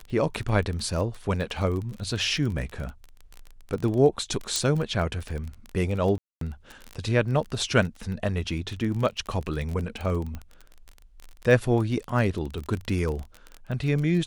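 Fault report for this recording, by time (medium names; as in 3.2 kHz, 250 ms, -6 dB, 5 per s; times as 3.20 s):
crackle 21 per s -30 dBFS
4.56 s: pop -11 dBFS
6.18–6.41 s: dropout 233 ms
10.35 s: pop -23 dBFS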